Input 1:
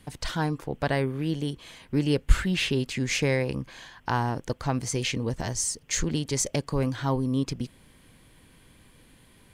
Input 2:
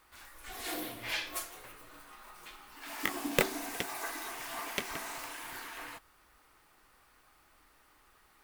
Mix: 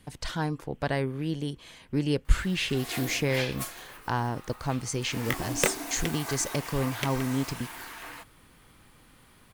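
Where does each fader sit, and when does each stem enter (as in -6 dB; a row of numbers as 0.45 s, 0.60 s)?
-2.5 dB, +2.0 dB; 0.00 s, 2.25 s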